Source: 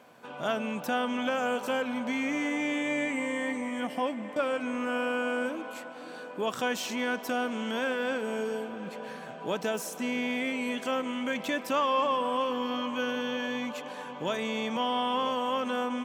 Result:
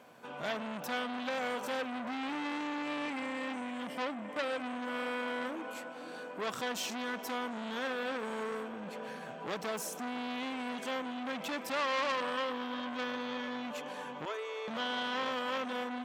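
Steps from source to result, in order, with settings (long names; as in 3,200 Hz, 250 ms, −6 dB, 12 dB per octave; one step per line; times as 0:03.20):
0:14.25–0:14.68: Chebyshev high-pass with heavy ripple 300 Hz, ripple 9 dB
saturating transformer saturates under 2,400 Hz
level −1.5 dB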